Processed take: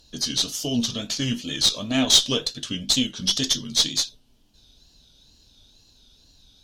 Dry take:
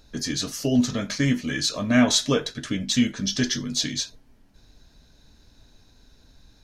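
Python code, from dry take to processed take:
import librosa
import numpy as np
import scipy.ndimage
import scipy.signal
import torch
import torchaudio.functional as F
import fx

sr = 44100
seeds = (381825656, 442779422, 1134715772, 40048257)

y = fx.wow_flutter(x, sr, seeds[0], rate_hz=2.1, depth_cents=110.0)
y = fx.high_shelf_res(y, sr, hz=2500.0, db=7.0, q=3.0)
y = fx.cheby_harmonics(y, sr, harmonics=(4, 8), levels_db=(-24, -31), full_scale_db=3.5)
y = y * librosa.db_to_amplitude(-4.5)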